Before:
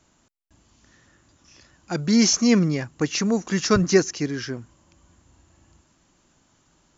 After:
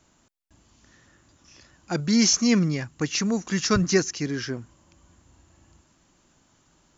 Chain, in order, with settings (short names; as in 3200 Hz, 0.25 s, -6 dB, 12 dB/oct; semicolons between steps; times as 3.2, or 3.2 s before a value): 2–4.26 bell 510 Hz -5 dB 2.3 oct